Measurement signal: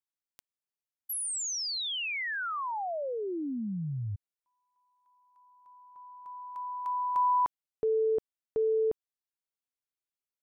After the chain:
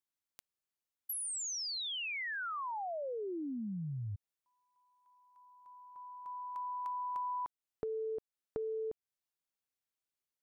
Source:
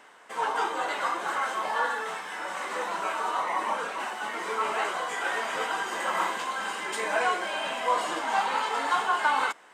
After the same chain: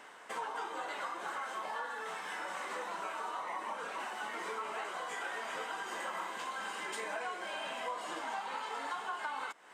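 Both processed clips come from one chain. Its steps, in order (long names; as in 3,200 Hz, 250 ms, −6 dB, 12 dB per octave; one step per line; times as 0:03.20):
downward compressor 5 to 1, threshold −38 dBFS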